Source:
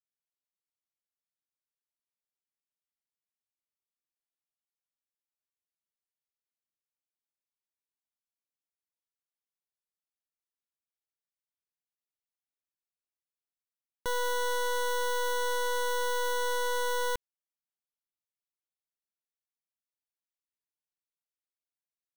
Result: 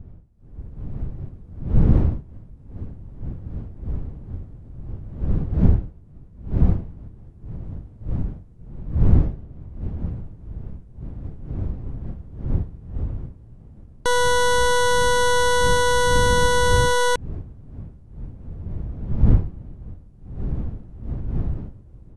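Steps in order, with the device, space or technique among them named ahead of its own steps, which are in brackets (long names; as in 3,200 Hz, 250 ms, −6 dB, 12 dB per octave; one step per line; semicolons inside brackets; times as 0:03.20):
smartphone video outdoors (wind on the microphone 100 Hz −33 dBFS; automatic gain control gain up to 13 dB; level −1 dB; AAC 96 kbit/s 24,000 Hz)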